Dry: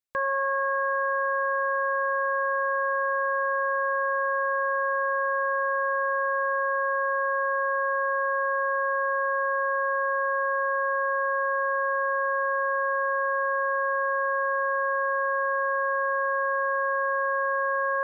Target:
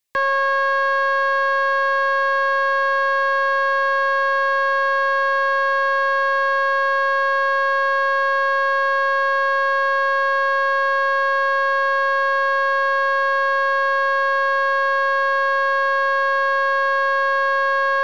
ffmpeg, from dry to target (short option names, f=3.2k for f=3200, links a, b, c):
-filter_complex "[0:a]equalizer=f=1.4k:w=7.4:g=-11.5,acrossover=split=790|830|890[a][b][c][d];[d]acontrast=28[e];[a][b][c][e]amix=inputs=4:normalize=0,asoftclip=type=tanh:threshold=-21.5dB,volume=8dB"